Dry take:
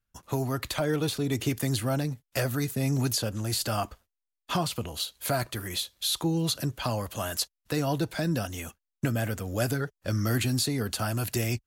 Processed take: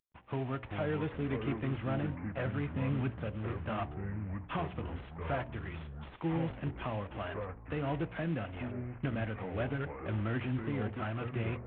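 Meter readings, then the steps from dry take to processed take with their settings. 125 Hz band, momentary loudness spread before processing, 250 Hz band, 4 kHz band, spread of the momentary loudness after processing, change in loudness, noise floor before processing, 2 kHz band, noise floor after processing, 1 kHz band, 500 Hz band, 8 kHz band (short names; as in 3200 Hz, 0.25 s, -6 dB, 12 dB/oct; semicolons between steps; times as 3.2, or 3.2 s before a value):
-6.0 dB, 5 LU, -6.0 dB, -20.0 dB, 6 LU, -7.5 dB, under -85 dBFS, -6.0 dB, -51 dBFS, -6.0 dB, -6.0 dB, under -40 dB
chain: CVSD 16 kbps; echoes that change speed 0.281 s, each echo -5 st, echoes 3, each echo -6 dB; de-hum 60 Hz, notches 16; gain -6 dB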